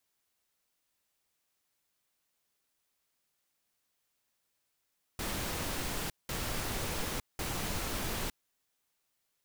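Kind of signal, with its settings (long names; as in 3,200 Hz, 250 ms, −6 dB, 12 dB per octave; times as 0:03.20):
noise bursts pink, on 0.91 s, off 0.19 s, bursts 3, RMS −35.5 dBFS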